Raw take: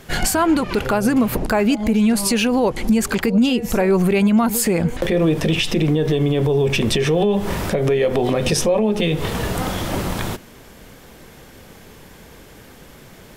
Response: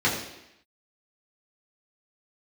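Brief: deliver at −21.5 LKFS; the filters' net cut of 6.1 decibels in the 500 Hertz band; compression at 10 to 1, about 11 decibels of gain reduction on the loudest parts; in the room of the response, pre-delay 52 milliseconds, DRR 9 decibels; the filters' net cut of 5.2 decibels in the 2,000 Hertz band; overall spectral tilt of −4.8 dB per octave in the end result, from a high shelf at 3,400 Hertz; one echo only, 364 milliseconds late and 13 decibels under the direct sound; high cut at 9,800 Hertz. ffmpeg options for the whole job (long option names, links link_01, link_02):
-filter_complex "[0:a]lowpass=9800,equalizer=frequency=500:width_type=o:gain=-7.5,equalizer=frequency=2000:width_type=o:gain=-9,highshelf=frequency=3400:gain=5.5,acompressor=threshold=-24dB:ratio=10,aecho=1:1:364:0.224,asplit=2[link_01][link_02];[1:a]atrim=start_sample=2205,adelay=52[link_03];[link_02][link_03]afir=irnorm=-1:irlink=0,volume=-24dB[link_04];[link_01][link_04]amix=inputs=2:normalize=0,volume=5.5dB"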